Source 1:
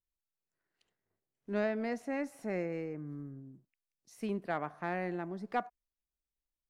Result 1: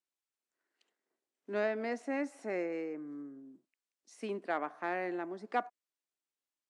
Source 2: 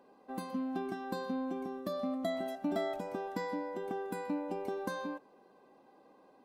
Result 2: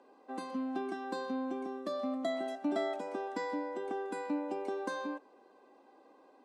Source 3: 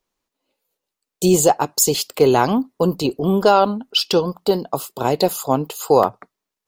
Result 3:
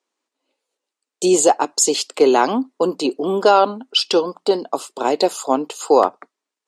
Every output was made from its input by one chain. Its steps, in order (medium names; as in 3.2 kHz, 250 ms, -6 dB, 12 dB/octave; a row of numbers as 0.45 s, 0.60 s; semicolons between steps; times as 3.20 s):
Chebyshev band-pass 270–8700 Hz, order 3; trim +1.5 dB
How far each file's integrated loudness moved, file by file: 0.0 LU, +0.5 LU, +0.5 LU